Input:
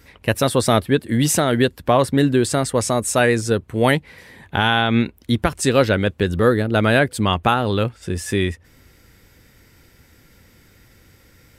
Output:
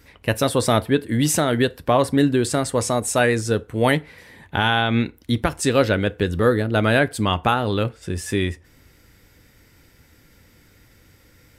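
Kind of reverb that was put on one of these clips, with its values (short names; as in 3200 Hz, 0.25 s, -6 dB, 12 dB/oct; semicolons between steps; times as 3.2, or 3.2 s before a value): FDN reverb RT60 0.34 s, low-frequency decay 0.75×, high-frequency decay 0.7×, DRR 14 dB; gain -2 dB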